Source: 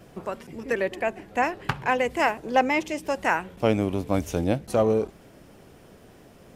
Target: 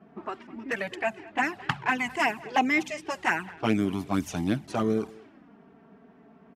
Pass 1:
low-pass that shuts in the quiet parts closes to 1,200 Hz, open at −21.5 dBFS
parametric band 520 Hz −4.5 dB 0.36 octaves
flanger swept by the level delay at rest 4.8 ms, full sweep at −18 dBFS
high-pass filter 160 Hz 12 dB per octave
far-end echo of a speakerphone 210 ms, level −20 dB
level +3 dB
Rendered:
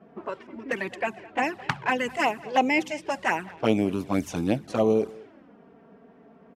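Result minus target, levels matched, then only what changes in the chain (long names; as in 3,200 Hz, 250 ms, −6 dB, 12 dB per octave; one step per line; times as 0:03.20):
500 Hz band +4.0 dB
change: parametric band 520 Hz −15.5 dB 0.36 octaves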